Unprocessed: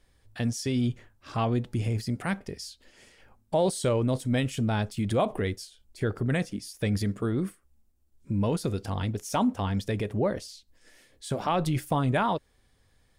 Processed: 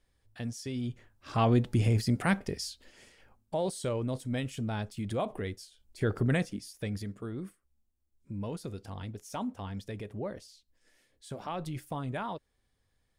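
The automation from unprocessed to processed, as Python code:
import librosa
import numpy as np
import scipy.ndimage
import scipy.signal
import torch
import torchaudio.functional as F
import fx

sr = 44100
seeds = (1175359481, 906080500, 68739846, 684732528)

y = fx.gain(x, sr, db=fx.line((0.84, -8.5), (1.5, 2.5), (2.64, 2.5), (3.56, -7.0), (5.62, -7.0), (6.2, 1.0), (7.07, -10.5)))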